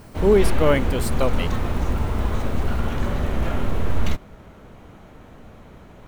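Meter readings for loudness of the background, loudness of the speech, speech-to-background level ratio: -26.0 LUFS, -21.5 LUFS, 4.5 dB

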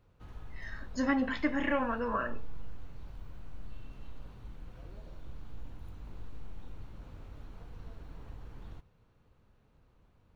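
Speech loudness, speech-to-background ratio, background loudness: -32.5 LUFS, 18.5 dB, -51.0 LUFS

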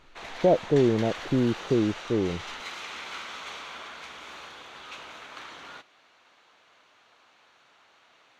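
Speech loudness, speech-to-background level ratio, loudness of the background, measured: -25.5 LUFS, 13.5 dB, -39.0 LUFS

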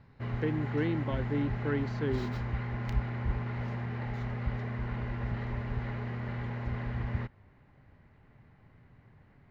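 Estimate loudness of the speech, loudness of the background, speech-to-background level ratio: -34.5 LUFS, -35.5 LUFS, 1.0 dB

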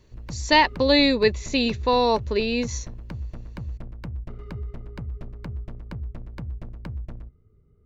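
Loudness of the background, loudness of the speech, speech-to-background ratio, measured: -37.0 LUFS, -21.0 LUFS, 16.0 dB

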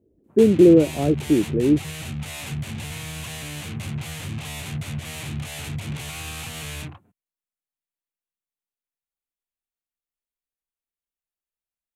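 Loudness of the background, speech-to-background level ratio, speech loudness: -32.0 LUFS, 14.0 dB, -18.0 LUFS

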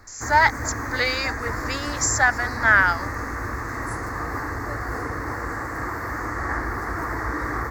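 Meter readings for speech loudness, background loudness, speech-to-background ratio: -21.0 LUFS, -29.0 LUFS, 8.0 dB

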